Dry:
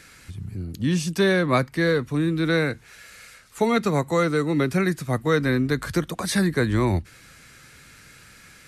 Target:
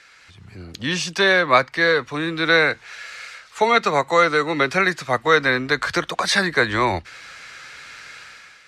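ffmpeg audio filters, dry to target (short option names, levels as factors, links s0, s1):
-filter_complex "[0:a]acrossover=split=530 6300:gain=0.126 1 0.0794[s0][s1][s2];[s0][s1][s2]amix=inputs=3:normalize=0,dynaudnorm=f=130:g=7:m=3.35,volume=1.12"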